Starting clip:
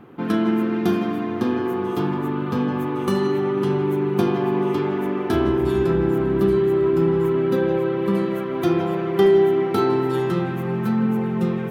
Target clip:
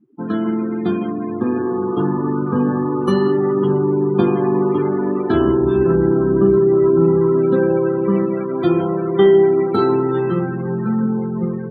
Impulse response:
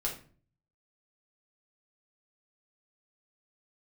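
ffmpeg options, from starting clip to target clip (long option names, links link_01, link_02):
-filter_complex "[0:a]afftdn=noise_reduction=34:noise_floor=-30,adynamicequalizer=threshold=0.01:dfrequency=740:dqfactor=2.4:tfrequency=740:tqfactor=2.4:attack=5:release=100:ratio=0.375:range=1.5:mode=cutabove:tftype=bell,acrossover=split=120[link_01][link_02];[link_02]dynaudnorm=framelen=670:gausssize=5:maxgain=7.5dB[link_03];[link_01][link_03]amix=inputs=2:normalize=0"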